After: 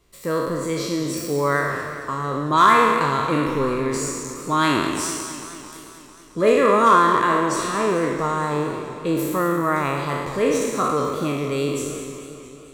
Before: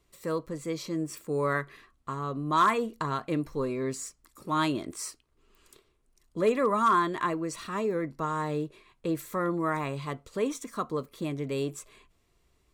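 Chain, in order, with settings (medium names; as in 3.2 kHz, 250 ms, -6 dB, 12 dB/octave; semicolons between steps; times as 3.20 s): spectral sustain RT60 1.39 s; modulated delay 222 ms, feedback 67%, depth 125 cents, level -12 dB; trim +6 dB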